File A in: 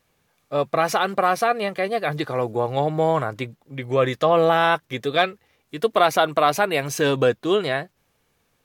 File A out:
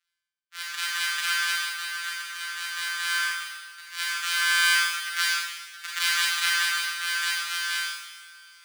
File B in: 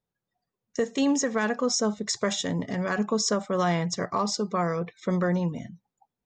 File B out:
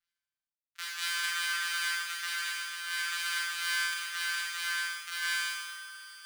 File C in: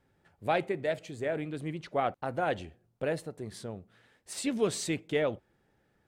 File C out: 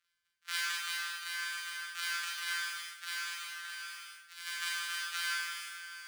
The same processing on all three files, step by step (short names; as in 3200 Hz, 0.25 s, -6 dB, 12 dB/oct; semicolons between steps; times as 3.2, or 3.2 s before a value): sample sorter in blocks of 256 samples; in parallel at -2.5 dB: compressor 6:1, threshold -34 dBFS; on the sum: elliptic high-pass 1400 Hz, stop band 70 dB; high shelf 8200 Hz -6.5 dB; Schroeder reverb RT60 2.3 s, combs from 31 ms, DRR -6.5 dB; reverse; upward compressor, threshold -30 dBFS; reverse; companded quantiser 6-bit; three-band expander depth 70%; gain -4 dB